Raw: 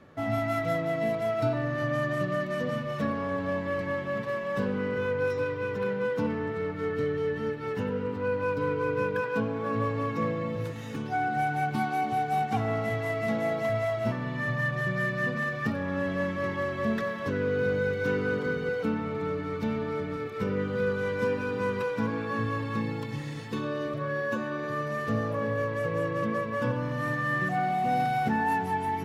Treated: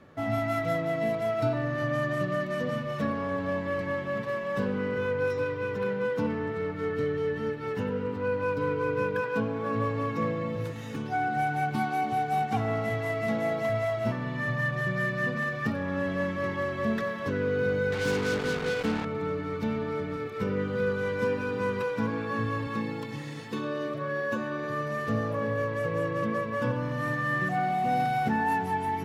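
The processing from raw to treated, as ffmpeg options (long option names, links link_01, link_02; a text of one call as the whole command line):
ffmpeg -i in.wav -filter_complex "[0:a]asettb=1/sr,asplit=3[link_01][link_02][link_03];[link_01]atrim=end=17.924[link_04];[link_02]atrim=start=17.92:end=19.05,asetpts=PTS-STARTPTS,afade=type=in:duration=0.004:curve=qsin,afade=type=out:start_time=1.126:duration=0.004:curve=qsin,acrusher=bits=4:mix=0:aa=0.5[link_05];[link_03]atrim=start=19.046[link_06];[link_04][link_05]acrossfade=duration=0.004:curve1=hsin:curve2=qsin[link_07];[link_07][link_06]acrossfade=duration=0.004:curve1=qsin:curve2=hsin,asettb=1/sr,asplit=3[link_08][link_09][link_10];[link_08]atrim=end=22.674[link_11];[link_09]atrim=start=22.67:end=24.32,asetpts=PTS-STARTPTS,afade=type=in:duration=0.004:curve=qsin,afade=type=out:start_time=1.646:duration=0.004:curve=qsin,highpass=150[link_12];[link_10]atrim=start=24.316[link_13];[link_11][link_12]acrossfade=duration=0.004:curve1=hsin:curve2=qsin[link_14];[link_14][link_13]acrossfade=duration=0.004:curve1=qsin:curve2=hsin" out.wav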